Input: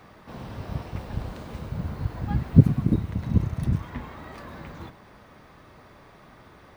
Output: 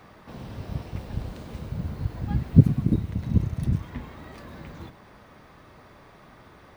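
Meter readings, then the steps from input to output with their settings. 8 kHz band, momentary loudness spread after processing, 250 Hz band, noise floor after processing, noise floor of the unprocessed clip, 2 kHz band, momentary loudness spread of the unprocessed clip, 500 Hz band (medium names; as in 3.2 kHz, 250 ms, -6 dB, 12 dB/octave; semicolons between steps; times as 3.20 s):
no reading, 23 LU, -0.5 dB, -52 dBFS, -52 dBFS, -2.5 dB, 22 LU, -1.5 dB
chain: dynamic bell 1.1 kHz, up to -5 dB, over -47 dBFS, Q 0.71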